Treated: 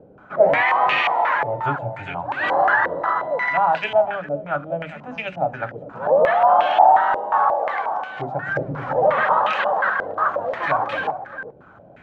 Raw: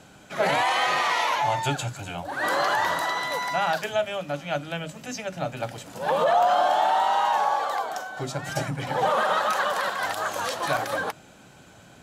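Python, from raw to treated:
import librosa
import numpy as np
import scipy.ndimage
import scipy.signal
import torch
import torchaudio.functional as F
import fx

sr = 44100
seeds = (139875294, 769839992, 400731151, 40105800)

y = fx.delta_mod(x, sr, bps=64000, step_db=-27.0, at=(8.62, 9.08))
y = y + 10.0 ** (-13.5 / 20.0) * np.pad(y, (int(402 * sr / 1000.0), 0))[:len(y)]
y = fx.filter_held_lowpass(y, sr, hz=5.6, low_hz=490.0, high_hz=2600.0)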